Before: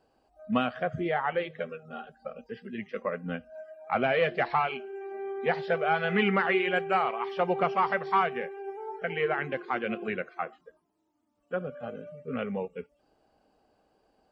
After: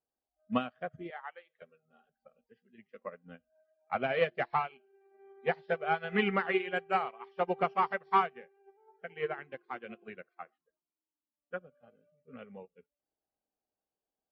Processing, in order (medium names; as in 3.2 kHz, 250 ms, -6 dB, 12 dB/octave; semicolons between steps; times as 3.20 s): 1.10–1.62 s: high-pass 780 Hz 12 dB/octave; 10.44–11.58 s: dynamic bell 1.9 kHz, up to +7 dB, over -58 dBFS, Q 1.5; upward expansion 2.5:1, over -39 dBFS